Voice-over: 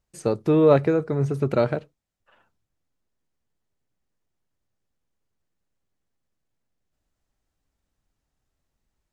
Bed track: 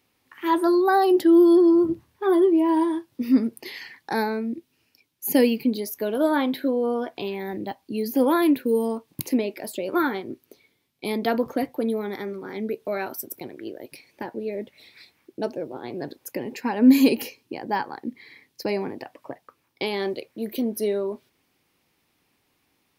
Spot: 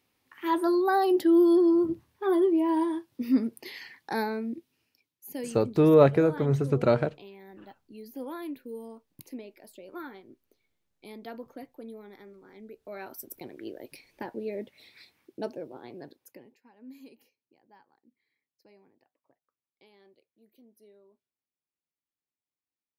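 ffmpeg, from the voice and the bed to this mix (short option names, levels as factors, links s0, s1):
-filter_complex "[0:a]adelay=5300,volume=0.841[s0];[1:a]volume=2.66,afade=t=out:st=4.61:d=0.67:silence=0.223872,afade=t=in:st=12.76:d=0.87:silence=0.211349,afade=t=out:st=15.15:d=1.43:silence=0.0375837[s1];[s0][s1]amix=inputs=2:normalize=0"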